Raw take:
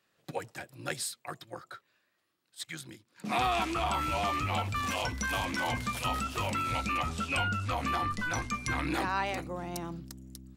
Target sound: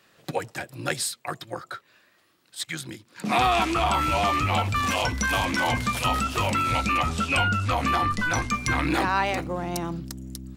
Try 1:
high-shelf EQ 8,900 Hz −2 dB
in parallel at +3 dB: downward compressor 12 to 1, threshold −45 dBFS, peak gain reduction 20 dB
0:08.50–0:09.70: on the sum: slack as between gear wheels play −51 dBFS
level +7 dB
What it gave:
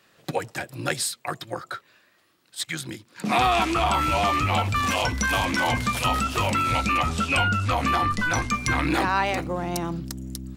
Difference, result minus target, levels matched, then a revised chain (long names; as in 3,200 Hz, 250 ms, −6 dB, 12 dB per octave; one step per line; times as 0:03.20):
downward compressor: peak gain reduction −7.5 dB
high-shelf EQ 8,900 Hz −2 dB
in parallel at +3 dB: downward compressor 12 to 1, threshold −53 dBFS, peak gain reduction 27.5 dB
0:08.50–0:09.70: on the sum: slack as between gear wheels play −51 dBFS
level +7 dB